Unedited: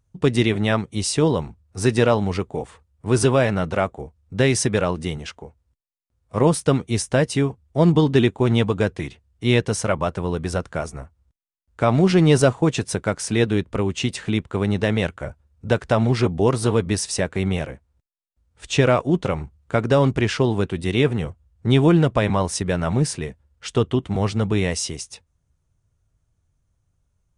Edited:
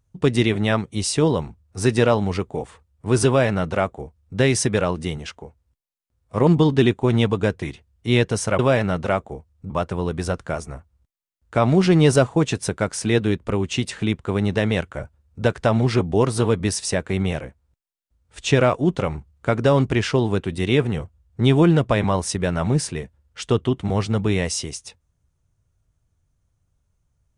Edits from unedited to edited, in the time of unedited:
3.27–4.38 copy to 9.96
6.47–7.84 cut

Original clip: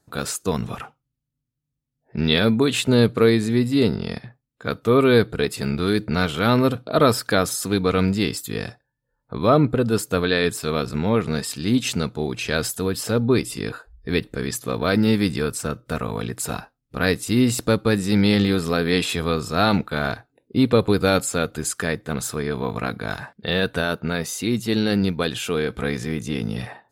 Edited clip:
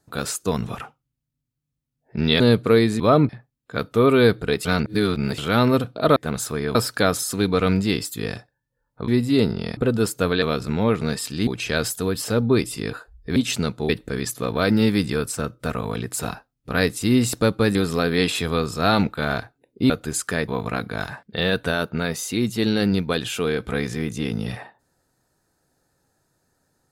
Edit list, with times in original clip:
2.4–2.91 cut
3.51–4.2 swap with 9.4–9.69
5.56–6.29 reverse
10.34–10.68 cut
11.73–12.26 move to 14.15
18.01–18.49 cut
20.64–21.41 cut
21.99–22.58 move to 7.07

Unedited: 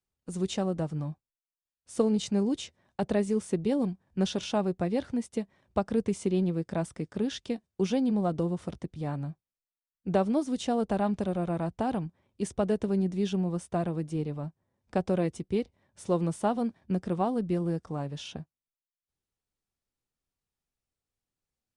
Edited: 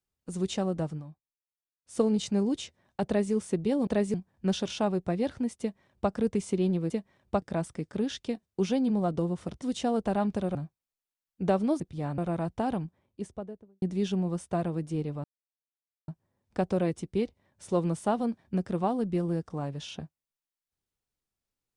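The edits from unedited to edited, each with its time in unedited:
0.9–1.96 dip -10.5 dB, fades 0.13 s
3.06–3.33 copy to 3.87
5.33–5.85 copy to 6.63
8.83–9.21 swap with 10.46–11.39
11.93–13.03 studio fade out
14.45 insert silence 0.84 s

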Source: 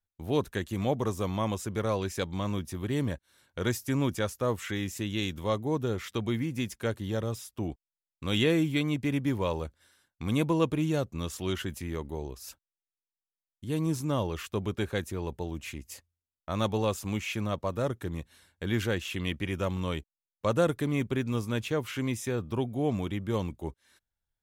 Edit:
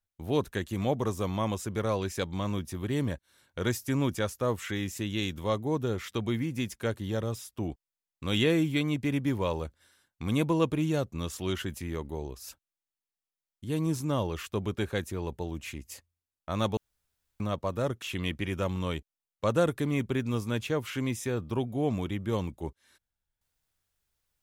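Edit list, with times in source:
16.77–17.4 room tone
18.02–19.03 cut

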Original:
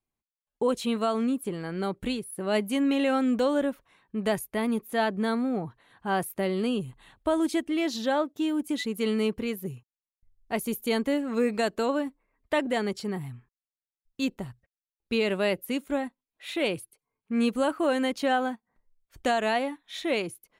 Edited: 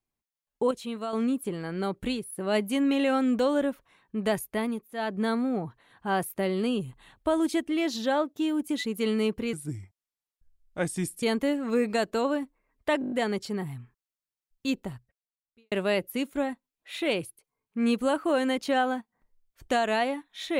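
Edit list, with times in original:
0.71–1.13 gain -7 dB
4.57–5.21 dip -14 dB, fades 0.32 s
9.53–10.87 speed 79%
12.66 stutter 0.02 s, 6 plays
14.47–15.26 fade out quadratic

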